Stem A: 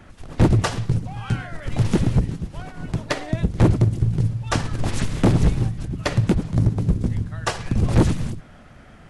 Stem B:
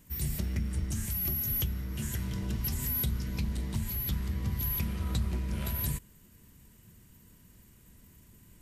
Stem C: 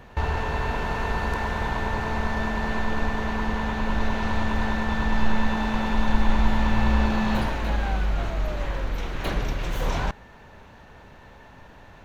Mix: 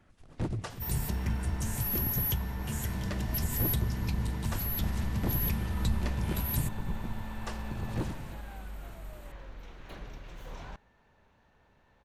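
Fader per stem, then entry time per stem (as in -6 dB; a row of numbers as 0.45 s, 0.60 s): -17.5 dB, 0.0 dB, -18.0 dB; 0.00 s, 0.70 s, 0.65 s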